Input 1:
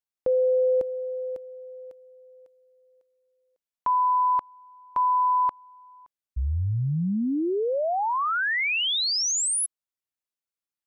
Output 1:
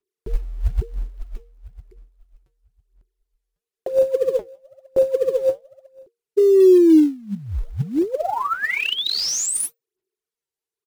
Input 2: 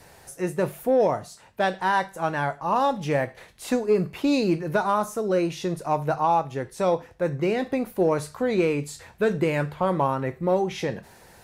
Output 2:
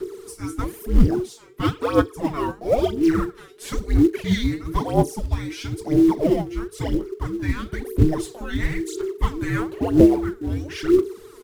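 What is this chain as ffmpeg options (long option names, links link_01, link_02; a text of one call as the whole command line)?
ffmpeg -i in.wav -filter_complex "[0:a]aresample=32000,aresample=44100,lowshelf=frequency=150:width_type=q:width=3:gain=13.5,aphaser=in_gain=1:out_gain=1:delay=5:decay=0.77:speed=1:type=sinusoidal,afreqshift=-470,asplit=2[link_01][link_02];[link_02]acrusher=bits=4:mode=log:mix=0:aa=0.000001,volume=-9dB[link_03];[link_01][link_03]amix=inputs=2:normalize=0,volume=-4.5dB" out.wav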